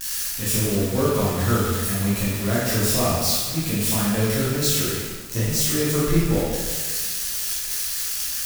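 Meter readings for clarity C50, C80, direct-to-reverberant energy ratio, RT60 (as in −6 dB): −1.5 dB, 1.0 dB, −8.5 dB, 1.5 s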